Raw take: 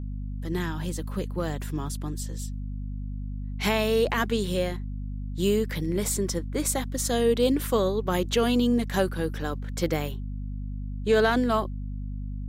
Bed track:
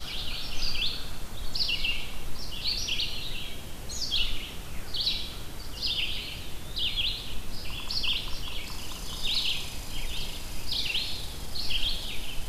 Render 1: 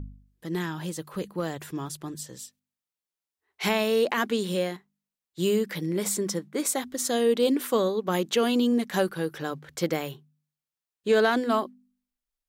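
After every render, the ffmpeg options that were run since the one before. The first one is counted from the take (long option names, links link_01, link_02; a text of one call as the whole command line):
ffmpeg -i in.wav -af "bandreject=frequency=50:width_type=h:width=4,bandreject=frequency=100:width_type=h:width=4,bandreject=frequency=150:width_type=h:width=4,bandreject=frequency=200:width_type=h:width=4,bandreject=frequency=250:width_type=h:width=4" out.wav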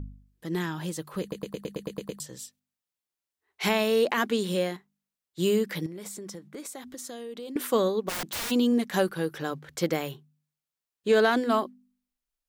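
ffmpeg -i in.wav -filter_complex "[0:a]asettb=1/sr,asplit=3[link_01][link_02][link_03];[link_01]atrim=end=5.864[link_04];[link_02]atrim=start=5.86:end=7.56,asetpts=PTS-STARTPTS,afade=type=in:duration=0.004:curve=qsin,afade=type=out:start_time=1.696:duration=0.004:curve=qsin,acompressor=threshold=-37dB:ratio=6:attack=3.2:release=140:knee=1:detection=peak[link_05];[link_03]atrim=start=7.556[link_06];[link_04][link_05]acrossfade=duration=0.004:curve1=hsin:curve2=qsin[link_07];[link_07][link_06]acrossfade=duration=0.004:curve1=qsin:curve2=hsin,asplit=3[link_08][link_09][link_10];[link_08]afade=type=out:start_time=8.08:duration=0.02[link_11];[link_09]aeval=exprs='(mod(23.7*val(0)+1,2)-1)/23.7':channel_layout=same,afade=type=in:start_time=8.08:duration=0.02,afade=type=out:start_time=8.5:duration=0.02[link_12];[link_10]afade=type=in:start_time=8.5:duration=0.02[link_13];[link_11][link_12][link_13]amix=inputs=3:normalize=0,asplit=10[link_14][link_15][link_16][link_17][link_18][link_19][link_20][link_21][link_22][link_23];[link_14]atrim=end=1.322[link_24];[link_15]atrim=start=1.208:end=1.322[link_25];[link_16]atrim=start=1.208:end=1.322[link_26];[link_17]atrim=start=1.208:end=1.322[link_27];[link_18]atrim=start=1.208:end=1.322[link_28];[link_19]atrim=start=1.208:end=1.322[link_29];[link_20]atrim=start=1.208:end=1.322[link_30];[link_21]atrim=start=1.208:end=1.322[link_31];[link_22]atrim=start=1.208:end=1.322[link_32];[link_23]atrim=start=2.198[link_33];[link_24][link_25]acrossfade=duration=0.004:curve1=hsin:curve2=hsin[link_34];[link_34][link_26]acrossfade=duration=0.004:curve1=hsin:curve2=hsin[link_35];[link_35][link_27]acrossfade=duration=0.004:curve1=hsin:curve2=hsin[link_36];[link_36][link_28]acrossfade=duration=0.004:curve1=hsin:curve2=hsin[link_37];[link_37][link_29]acrossfade=duration=0.004:curve1=hsin:curve2=hsin[link_38];[link_38][link_30]acrossfade=duration=0.004:curve1=hsin:curve2=hsin[link_39];[link_39][link_31]acrossfade=duration=0.004:curve1=hsin:curve2=hsin[link_40];[link_40][link_32]acrossfade=duration=0.004:curve1=hsin:curve2=hsin[link_41];[link_41][link_33]acrossfade=duration=0.004:curve1=hsin:curve2=hsin" out.wav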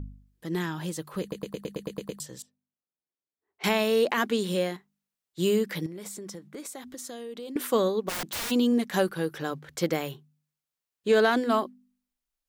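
ffmpeg -i in.wav -filter_complex "[0:a]asettb=1/sr,asplit=3[link_01][link_02][link_03];[link_01]atrim=end=2.424[link_04];[link_02]atrim=start=2.42:end=3.64,asetpts=PTS-STARTPTS,afade=type=in:duration=0.004:curve=qsin,afade=type=out:start_time=1.216:duration=0.004:curve=qsin,bandpass=frequency=270:width_type=q:width=0.58[link_05];[link_03]atrim=start=3.636[link_06];[link_04][link_05]acrossfade=duration=0.004:curve1=hsin:curve2=qsin[link_07];[link_07][link_06]acrossfade=duration=0.004:curve1=qsin:curve2=hsin" out.wav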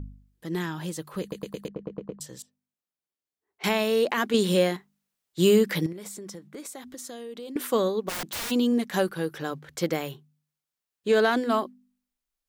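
ffmpeg -i in.wav -filter_complex "[0:a]asettb=1/sr,asplit=3[link_01][link_02][link_03];[link_01]atrim=end=1.684[link_04];[link_02]atrim=start=1.68:end=2.21,asetpts=PTS-STARTPTS,afade=type=in:duration=0.004:curve=qsin,afade=type=out:start_time=0.526:duration=0.004:curve=qsin,adynamicsmooth=sensitivity=1:basefreq=960[link_05];[link_03]atrim=start=2.206[link_06];[link_04][link_05]acrossfade=duration=0.004:curve1=hsin:curve2=qsin[link_07];[link_07][link_06]acrossfade=duration=0.004:curve1=qsin:curve2=hsin,asettb=1/sr,asplit=3[link_08][link_09][link_10];[link_08]atrim=end=4.344[link_11];[link_09]atrim=start=4.34:end=5.93,asetpts=PTS-STARTPTS,afade=type=in:duration=0.004:curve=qsin,afade=type=out:start_time=1.586:duration=0.004:curve=qsin,acontrast=40[link_12];[link_10]atrim=start=5.926[link_13];[link_11][link_12]acrossfade=duration=0.004:curve1=hsin:curve2=qsin[link_14];[link_14][link_13]acrossfade=duration=0.004:curve1=qsin:curve2=hsin" out.wav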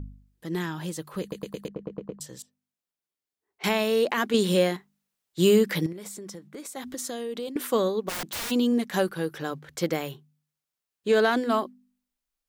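ffmpeg -i in.wav -filter_complex "[0:a]asettb=1/sr,asplit=3[link_01][link_02][link_03];[link_01]atrim=end=6.764[link_04];[link_02]atrim=start=6.76:end=7.49,asetpts=PTS-STARTPTS,afade=type=in:duration=0.004:curve=qsin,afade=type=out:start_time=0.726:duration=0.004:curve=qsin,acontrast=46[link_05];[link_03]atrim=start=7.486[link_06];[link_04][link_05]acrossfade=duration=0.004:curve1=hsin:curve2=qsin[link_07];[link_07][link_06]acrossfade=duration=0.004:curve1=qsin:curve2=hsin" out.wav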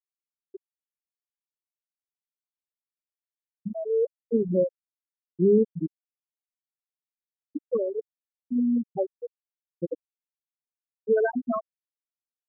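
ffmpeg -i in.wav -af "highpass=frequency=44:width=0.5412,highpass=frequency=44:width=1.3066,afftfilt=real='re*gte(hypot(re,im),0.447)':imag='im*gte(hypot(re,im),0.447)':win_size=1024:overlap=0.75" out.wav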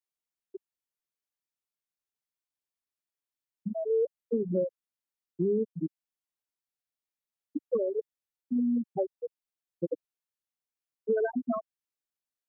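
ffmpeg -i in.wav -filter_complex "[0:a]alimiter=limit=-16.5dB:level=0:latency=1:release=432,acrossover=split=140|630[link_01][link_02][link_03];[link_01]acompressor=threshold=-51dB:ratio=4[link_04];[link_02]acompressor=threshold=-26dB:ratio=4[link_05];[link_03]acompressor=threshold=-36dB:ratio=4[link_06];[link_04][link_05][link_06]amix=inputs=3:normalize=0" out.wav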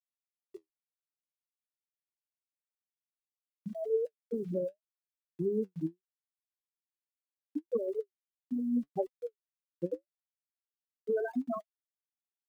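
ffmpeg -i in.wav -af "aeval=exprs='val(0)*gte(abs(val(0)),0.00251)':channel_layout=same,flanger=delay=3.8:depth=9:regen=53:speed=0.77:shape=triangular" out.wav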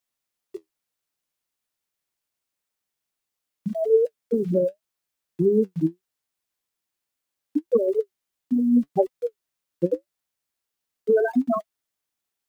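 ffmpeg -i in.wav -af "volume=12dB" out.wav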